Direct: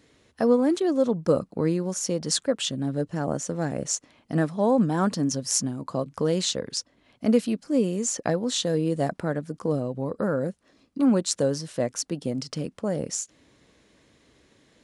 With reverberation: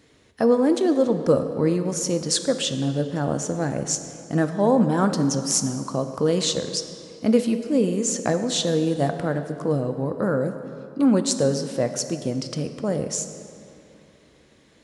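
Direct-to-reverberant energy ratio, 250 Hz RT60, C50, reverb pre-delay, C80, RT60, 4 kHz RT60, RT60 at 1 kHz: 7.5 dB, 2.7 s, 9.0 dB, 3 ms, 10.0 dB, 2.8 s, 1.8 s, 2.8 s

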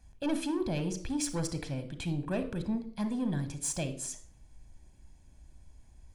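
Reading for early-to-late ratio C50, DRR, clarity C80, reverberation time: 12.0 dB, 10.0 dB, 16.0 dB, 0.55 s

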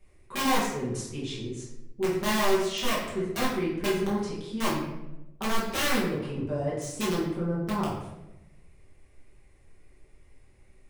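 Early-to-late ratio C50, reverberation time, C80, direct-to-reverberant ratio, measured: 2.0 dB, 0.95 s, 5.5 dB, -8.5 dB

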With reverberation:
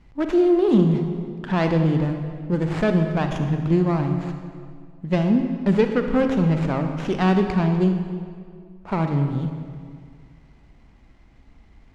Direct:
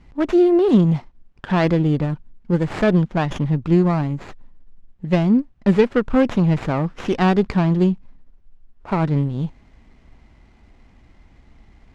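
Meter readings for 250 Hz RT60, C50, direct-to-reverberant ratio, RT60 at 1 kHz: 2.1 s, 6.0 dB, 5.5 dB, 2.0 s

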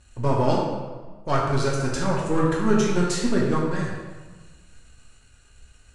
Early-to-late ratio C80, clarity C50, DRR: 3.0 dB, 1.0 dB, -4.0 dB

